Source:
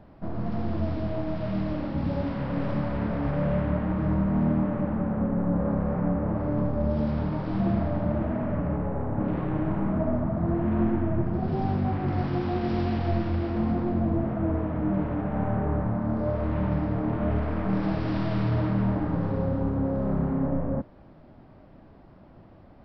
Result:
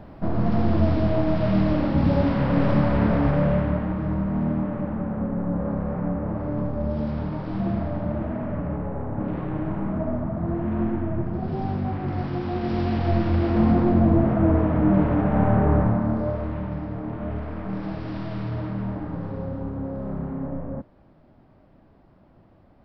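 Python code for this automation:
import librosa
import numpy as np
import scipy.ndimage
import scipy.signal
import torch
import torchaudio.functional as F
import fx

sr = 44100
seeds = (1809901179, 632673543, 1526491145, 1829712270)

y = fx.gain(x, sr, db=fx.line((3.14, 8.0), (4.03, -0.5), (12.41, -0.5), (13.64, 7.5), (15.82, 7.5), (16.67, -4.0)))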